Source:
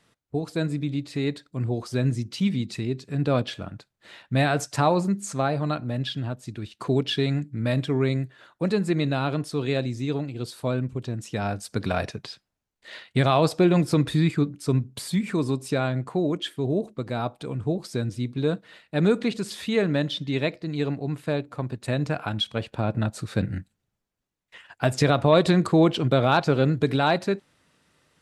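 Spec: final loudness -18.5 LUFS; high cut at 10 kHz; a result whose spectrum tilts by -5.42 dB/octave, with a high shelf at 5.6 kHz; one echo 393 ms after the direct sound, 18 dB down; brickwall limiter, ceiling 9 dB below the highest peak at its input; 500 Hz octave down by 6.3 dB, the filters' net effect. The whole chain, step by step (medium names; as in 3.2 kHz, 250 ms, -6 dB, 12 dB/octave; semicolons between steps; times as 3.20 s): low-pass 10 kHz; peaking EQ 500 Hz -8.5 dB; treble shelf 5.6 kHz +7.5 dB; peak limiter -15 dBFS; delay 393 ms -18 dB; trim +10 dB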